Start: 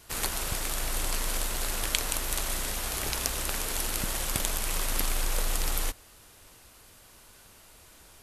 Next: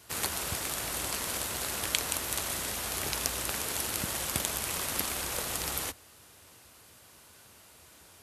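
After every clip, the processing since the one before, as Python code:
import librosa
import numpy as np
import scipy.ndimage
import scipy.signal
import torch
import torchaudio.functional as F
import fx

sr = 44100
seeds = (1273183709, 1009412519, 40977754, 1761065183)

y = scipy.signal.sosfilt(scipy.signal.butter(4, 67.0, 'highpass', fs=sr, output='sos'), x)
y = F.gain(torch.from_numpy(y), -1.0).numpy()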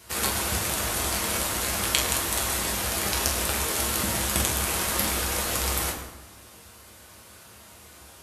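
y = fx.rev_fdn(x, sr, rt60_s=1.1, lf_ratio=1.25, hf_ratio=0.65, size_ms=87.0, drr_db=-1.5)
y = F.gain(torch.from_numpy(y), 3.5).numpy()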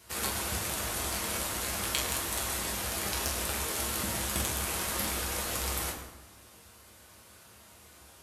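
y = 10.0 ** (-10.0 / 20.0) * np.tanh(x / 10.0 ** (-10.0 / 20.0))
y = F.gain(torch.from_numpy(y), -6.0).numpy()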